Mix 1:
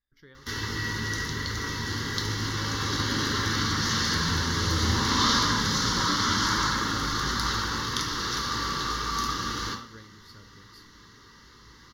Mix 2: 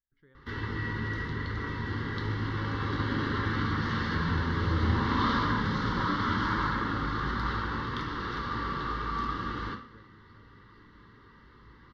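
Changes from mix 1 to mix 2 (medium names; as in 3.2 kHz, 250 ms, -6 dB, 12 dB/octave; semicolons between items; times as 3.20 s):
speech -7.5 dB; master: add distance through air 470 m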